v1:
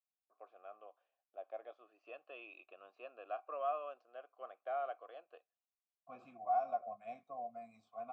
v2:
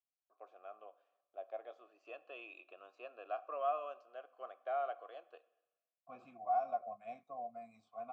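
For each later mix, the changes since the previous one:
first voice: remove high-frequency loss of the air 120 metres
reverb: on, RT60 1.1 s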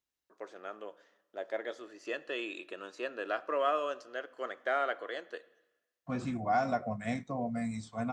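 second voice +3.0 dB
master: remove formant filter a

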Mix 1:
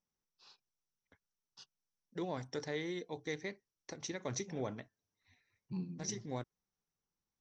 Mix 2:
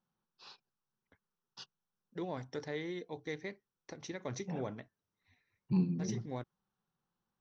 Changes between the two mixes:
first voice +10.5 dB
master: add high-frequency loss of the air 110 metres

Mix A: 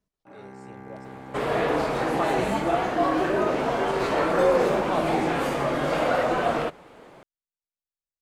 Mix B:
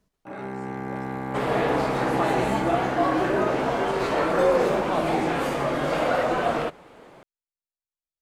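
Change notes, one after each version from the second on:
first sound +10.5 dB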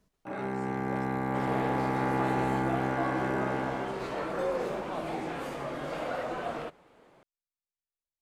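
second sound −11.0 dB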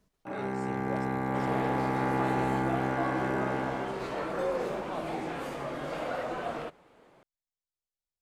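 speech +5.0 dB

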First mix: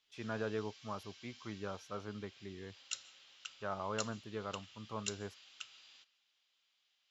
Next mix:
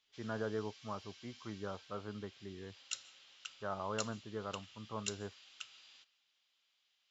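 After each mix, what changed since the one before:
speech: add Savitzky-Golay smoothing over 41 samples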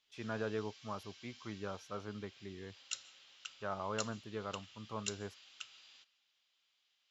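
speech: remove Savitzky-Golay smoothing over 41 samples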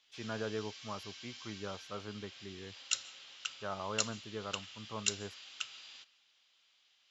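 background +8.0 dB

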